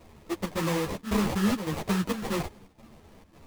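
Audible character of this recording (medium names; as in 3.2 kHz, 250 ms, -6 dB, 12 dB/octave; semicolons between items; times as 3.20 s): chopped level 1.8 Hz, depth 65%, duty 80%; aliases and images of a low sample rate 1.5 kHz, jitter 20%; a shimmering, thickened sound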